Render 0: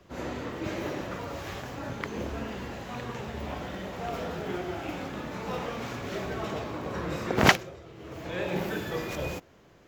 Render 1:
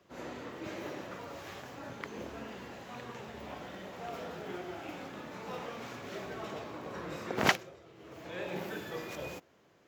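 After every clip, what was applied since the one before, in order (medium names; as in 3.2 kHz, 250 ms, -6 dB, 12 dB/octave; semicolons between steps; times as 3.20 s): high-pass 75 Hz; bass shelf 150 Hz -8 dB; trim -6.5 dB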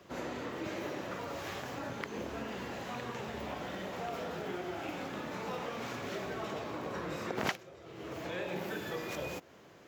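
compression 2.5:1, threshold -47 dBFS, peak gain reduction 18 dB; trim +8.5 dB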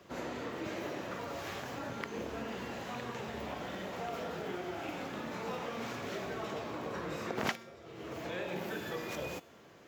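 feedback comb 230 Hz, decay 0.79 s, mix 60%; trim +7 dB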